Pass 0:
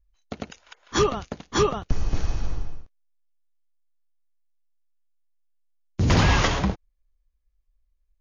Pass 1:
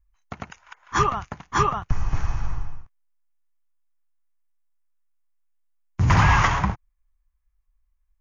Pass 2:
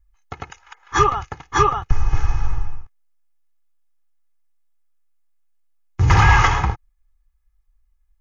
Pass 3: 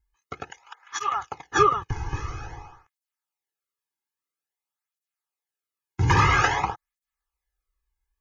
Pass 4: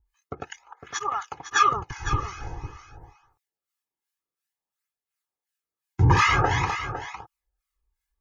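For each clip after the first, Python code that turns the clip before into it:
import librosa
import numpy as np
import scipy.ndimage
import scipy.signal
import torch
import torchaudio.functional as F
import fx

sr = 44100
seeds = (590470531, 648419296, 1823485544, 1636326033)

y1 = fx.graphic_eq_10(x, sr, hz=(125, 250, 500, 1000, 2000, 4000), db=(5, -6, -9, 9, 4, -9))
y2 = y1 + 0.71 * np.pad(y1, (int(2.4 * sr / 1000.0), 0))[:len(y1)]
y2 = y2 * librosa.db_to_amplitude(2.0)
y3 = fx.flanger_cancel(y2, sr, hz=0.5, depth_ms=1.7)
y4 = fx.harmonic_tremolo(y3, sr, hz=2.8, depth_pct=100, crossover_hz=1100.0)
y4 = y4 + 10.0 ** (-10.5 / 20.0) * np.pad(y4, (int(506 * sr / 1000.0), 0))[:len(y4)]
y4 = y4 * librosa.db_to_amplitude(5.0)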